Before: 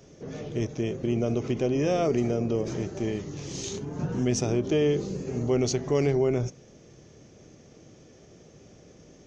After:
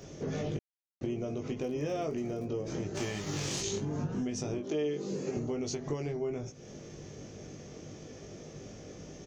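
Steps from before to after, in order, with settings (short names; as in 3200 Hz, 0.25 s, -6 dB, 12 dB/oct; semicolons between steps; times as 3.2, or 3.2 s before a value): 2.94–3.6 spectral whitening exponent 0.6; 4.58–5.37 HPF 220 Hz 12 dB/oct; compressor 12:1, threshold -36 dBFS, peak gain reduction 17.5 dB; 0.57–1.01 mute; 1.6–2.44 crackle 60/s -50 dBFS; doubler 20 ms -4.5 dB; gain +4 dB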